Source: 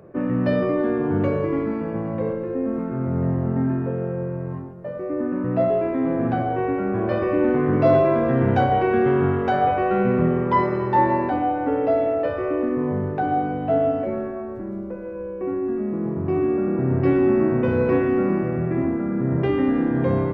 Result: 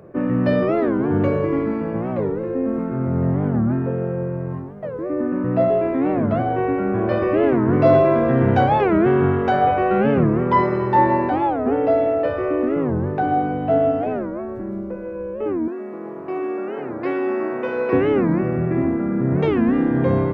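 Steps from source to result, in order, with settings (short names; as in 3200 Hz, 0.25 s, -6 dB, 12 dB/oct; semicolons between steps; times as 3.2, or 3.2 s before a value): 15.68–17.93 HPF 500 Hz 12 dB/oct; record warp 45 rpm, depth 250 cents; gain +2.5 dB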